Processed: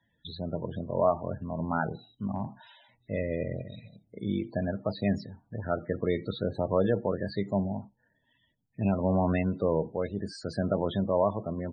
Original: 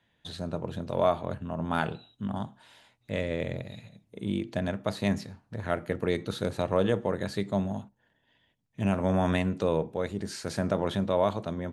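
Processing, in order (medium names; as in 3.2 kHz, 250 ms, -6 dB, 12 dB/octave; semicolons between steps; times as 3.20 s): loudest bins only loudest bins 32; 2.35–3.19 s: transient shaper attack 0 dB, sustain +6 dB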